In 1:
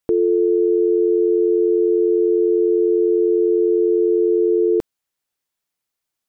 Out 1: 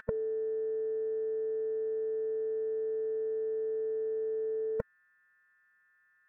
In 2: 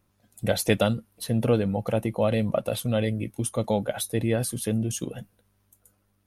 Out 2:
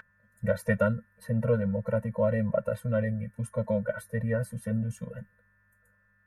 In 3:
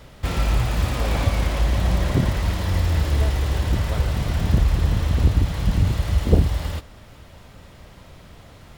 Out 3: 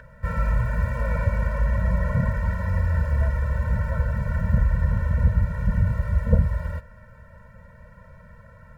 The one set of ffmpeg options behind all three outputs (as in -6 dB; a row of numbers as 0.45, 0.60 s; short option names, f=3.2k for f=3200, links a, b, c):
-af "highshelf=f=2.4k:t=q:w=3:g=-11.5,aeval=exprs='val(0)+0.0708*sin(2*PI*1600*n/s)':c=same,afftfilt=real='re*eq(mod(floor(b*sr/1024/220),2),0)':imag='im*eq(mod(floor(b*sr/1024/220),2),0)':win_size=1024:overlap=0.75,volume=-2dB"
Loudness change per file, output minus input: -17.0, -3.0, -2.5 LU